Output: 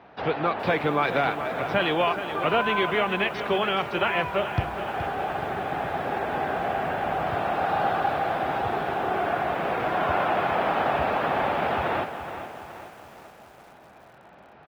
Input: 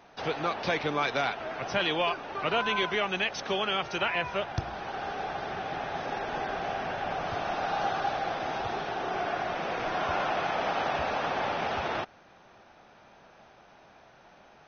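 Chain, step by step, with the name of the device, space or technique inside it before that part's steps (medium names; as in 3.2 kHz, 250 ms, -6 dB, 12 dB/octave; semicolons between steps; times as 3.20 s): high-pass 52 Hz 24 dB/octave; shout across a valley (distance through air 340 m; echo from a far wall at 100 m, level -22 dB); bit-crushed delay 422 ms, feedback 55%, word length 9-bit, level -10 dB; trim +6.5 dB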